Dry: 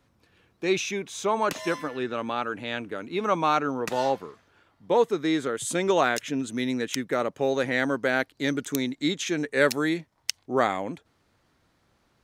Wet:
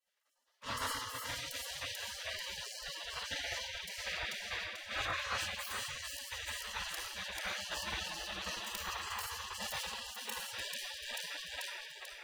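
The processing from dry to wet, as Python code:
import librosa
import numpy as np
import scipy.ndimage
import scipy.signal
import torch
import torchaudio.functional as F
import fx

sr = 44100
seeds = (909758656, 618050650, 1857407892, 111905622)

p1 = fx.lower_of_two(x, sr, delay_ms=0.84)
p2 = p1 + fx.echo_feedback(p1, sr, ms=439, feedback_pct=44, wet_db=-6, dry=0)
p3 = fx.room_shoebox(p2, sr, seeds[0], volume_m3=3300.0, walls='mixed', distance_m=3.3)
p4 = fx.spec_gate(p3, sr, threshold_db=-30, keep='weak')
p5 = fx.peak_eq(p4, sr, hz=1100.0, db=7.0, octaves=0.75)
p6 = fx.rider(p5, sr, range_db=10, speed_s=0.5)
p7 = fx.bass_treble(p6, sr, bass_db=6, treble_db=-9)
p8 = fx.sustainer(p7, sr, db_per_s=34.0)
y = p8 * librosa.db_to_amplitude(1.0)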